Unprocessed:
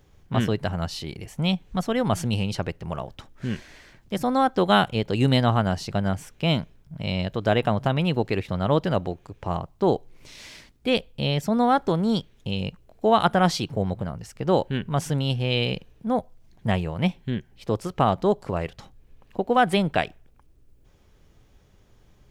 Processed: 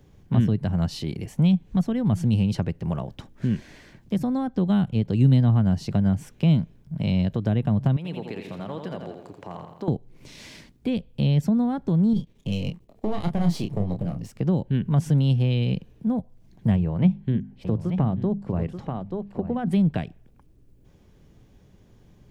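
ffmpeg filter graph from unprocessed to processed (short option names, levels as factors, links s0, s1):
-filter_complex "[0:a]asettb=1/sr,asplit=3[s0][s1][s2];[s0]atrim=end=7.964[s3];[s1]atrim=start=7.96:end=9.88,asetpts=PTS-STARTPTS,afade=t=in:d=0.004:c=qsin,afade=t=out:st=1.916:d=0.004:c=qsin,highpass=f=450:p=1,acompressor=threshold=0.01:ratio=2:attack=3.2:release=140:knee=1:detection=peak,aecho=1:1:84|168|252|336|420|504|588:0.501|0.266|0.141|0.0746|0.0395|0.021|0.0111,atrim=end_sample=84672[s4];[s2]atrim=start=9.876[s5];[s3][s4]acrossfade=d=0.004:c1=hsin:c2=qsin[s6];[s6][s5]acrossfade=d=0.004:c1=qsin:c2=hsin,asettb=1/sr,asplit=3[s7][s8][s9];[s7]atrim=end=12.134[s10];[s8]atrim=start=12.13:end=14.32,asetpts=PTS-STARTPTS,afade=t=in:d=0.004:c=qsin,afade=t=out:st=2.186:d=0.004:c=qsin,aeval=exprs='if(lt(val(0),0),0.251*val(0),val(0))':c=same,equalizer=f=1500:w=4:g=-7.5,asplit=2[s11][s12];[s12]adelay=29,volume=0.501[s13];[s11][s13]amix=inputs=2:normalize=0,atrim=end_sample=96579[s14];[s9]atrim=start=14.316[s15];[s10][s14]acrossfade=d=0.004:c1=hsin:c2=qsin[s16];[s16][s15]acrossfade=d=0.004:c1=qsin:c2=hsin,asettb=1/sr,asplit=3[s17][s18][s19];[s17]atrim=end=16.764[s20];[s18]atrim=start=16.76:end=19.71,asetpts=PTS-STARTPTS,afade=t=in:d=0.004:c=qsin,afade=t=out:st=2.946:d=0.004:c=qsin,highshelf=f=3200:g=-10,bandreject=f=50:t=h:w=6,bandreject=f=100:t=h:w=6,bandreject=f=150:t=h:w=6,bandreject=f=200:t=h:w=6,bandreject=f=250:t=h:w=6,aecho=1:1:883:0.299,atrim=end_sample=130095[s21];[s19]atrim=start=19.706[s22];[s20][s21]acrossfade=d=0.004:c1=hsin:c2=qsin[s23];[s23][s22]acrossfade=d=0.004:c1=qsin:c2=hsin,equalizer=f=190:t=o:w=2.3:g=9.5,bandreject=f=1300:w=16,acrossover=split=210[s24][s25];[s25]acompressor=threshold=0.0447:ratio=10[s26];[s24][s26]amix=inputs=2:normalize=0,volume=0.841"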